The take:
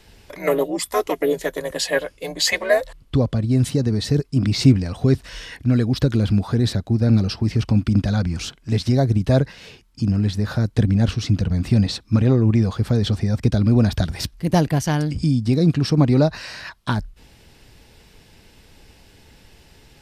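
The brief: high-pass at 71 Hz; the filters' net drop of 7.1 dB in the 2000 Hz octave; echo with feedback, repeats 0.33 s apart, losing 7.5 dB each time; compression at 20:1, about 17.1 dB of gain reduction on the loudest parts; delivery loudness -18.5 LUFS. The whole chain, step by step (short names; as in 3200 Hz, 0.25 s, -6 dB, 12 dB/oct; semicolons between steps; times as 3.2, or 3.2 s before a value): HPF 71 Hz; bell 2000 Hz -9 dB; compressor 20:1, threshold -24 dBFS; feedback echo 0.33 s, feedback 42%, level -7.5 dB; gain +11 dB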